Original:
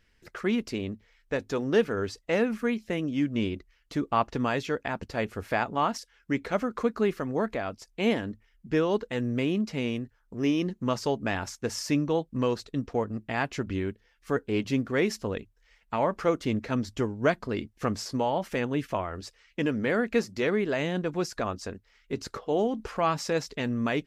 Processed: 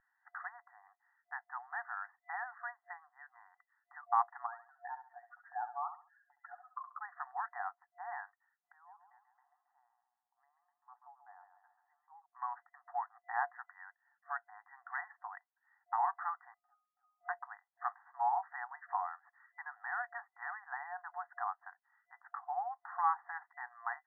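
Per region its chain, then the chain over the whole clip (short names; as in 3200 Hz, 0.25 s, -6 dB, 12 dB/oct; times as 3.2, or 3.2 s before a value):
4.46–7.01 spectral contrast raised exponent 2.4 + compressor 4:1, threshold -33 dBFS + feedback echo 68 ms, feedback 31%, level -10 dB
8.72–12.26 band-pass 160 Hz, Q 2 + feedback echo 0.136 s, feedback 52%, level -8.5 dB
16.54–17.29 frequency shift +180 Hz + compressor, threshold -33 dBFS + octave resonator D#, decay 0.52 s
18.82–21.72 LPF 2100 Hz + mismatched tape noise reduction encoder only
whole clip: de-esser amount 95%; FFT band-pass 710–2000 Hz; tilt -4.5 dB/oct; gain -2 dB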